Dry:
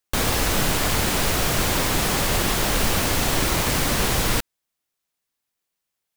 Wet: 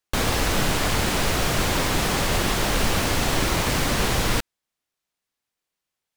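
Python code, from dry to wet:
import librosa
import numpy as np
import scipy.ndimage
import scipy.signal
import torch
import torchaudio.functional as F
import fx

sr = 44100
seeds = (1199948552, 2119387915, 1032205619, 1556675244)

y = fx.high_shelf(x, sr, hz=9400.0, db=-8.5)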